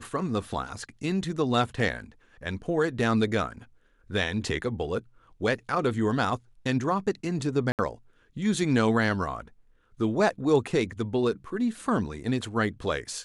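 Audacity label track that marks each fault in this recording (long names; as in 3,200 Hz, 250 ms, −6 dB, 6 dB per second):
7.720000	7.790000	drop-out 68 ms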